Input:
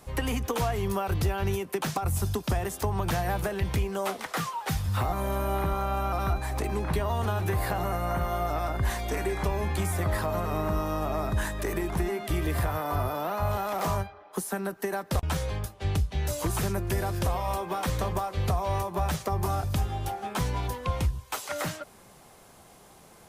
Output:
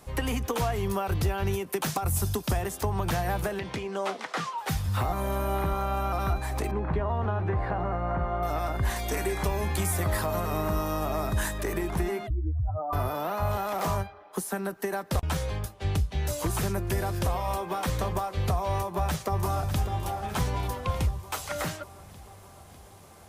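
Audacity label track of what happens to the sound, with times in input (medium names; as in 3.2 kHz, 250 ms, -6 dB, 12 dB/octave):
1.660000	2.620000	treble shelf 6.7 kHz +6.5 dB
3.590000	4.580000	band-pass 190–6200 Hz
6.710000	8.430000	low-pass 1.7 kHz
8.960000	11.580000	treble shelf 4.7 kHz +7 dB
12.270000	12.930000	spectral contrast enhancement exponent 3.2
18.730000	19.930000	echo throw 600 ms, feedback 65%, level -10.5 dB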